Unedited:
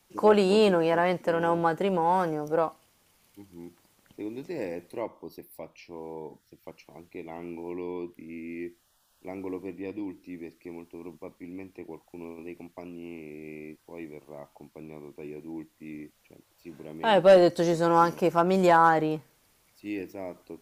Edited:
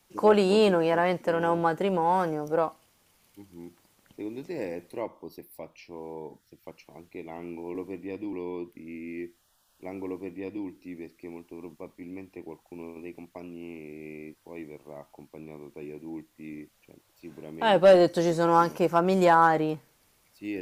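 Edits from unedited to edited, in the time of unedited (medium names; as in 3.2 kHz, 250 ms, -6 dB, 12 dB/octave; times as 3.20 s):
9.50–10.08 s: copy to 7.75 s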